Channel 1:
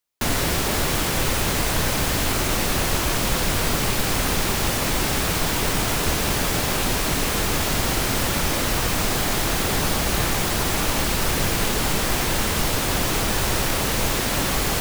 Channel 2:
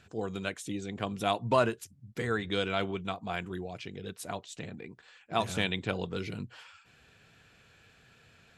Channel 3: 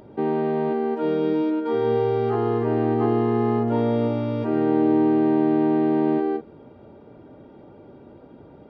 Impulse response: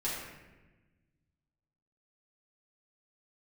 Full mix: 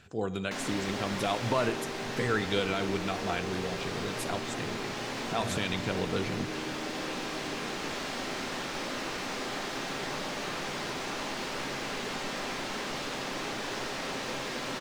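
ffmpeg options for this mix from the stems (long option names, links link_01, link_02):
-filter_complex "[0:a]acrossover=split=180 6700:gain=0.112 1 0.0891[link_01][link_02][link_03];[link_01][link_02][link_03]amix=inputs=3:normalize=0,adelay=300,volume=-2dB,asplit=2[link_04][link_05];[link_05]volume=-17dB[link_06];[1:a]alimiter=limit=-20dB:level=0:latency=1:release=83,volume=2dB,asplit=3[link_07][link_08][link_09];[link_08]volume=-16.5dB[link_10];[2:a]adelay=1500,volume=-10.5dB[link_11];[link_09]apad=whole_len=666104[link_12];[link_04][link_12]sidechaincompress=threshold=-39dB:ratio=8:attack=16:release=896[link_13];[link_13][link_11]amix=inputs=2:normalize=0,acompressor=threshold=-38dB:ratio=6,volume=0dB[link_14];[3:a]atrim=start_sample=2205[link_15];[link_06][link_10]amix=inputs=2:normalize=0[link_16];[link_16][link_15]afir=irnorm=-1:irlink=0[link_17];[link_07][link_14][link_17]amix=inputs=3:normalize=0"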